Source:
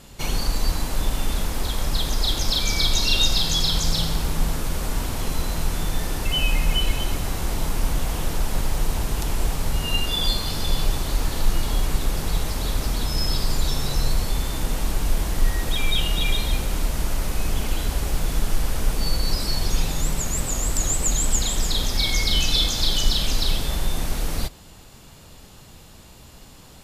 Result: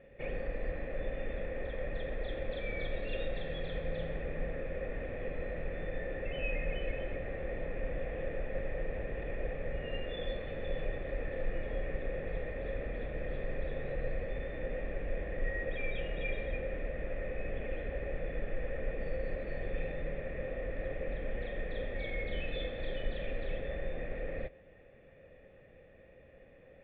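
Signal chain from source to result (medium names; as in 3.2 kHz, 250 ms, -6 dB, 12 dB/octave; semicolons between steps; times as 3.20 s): cascade formant filter e; band-stop 940 Hz, Q 5.3; trim +4.5 dB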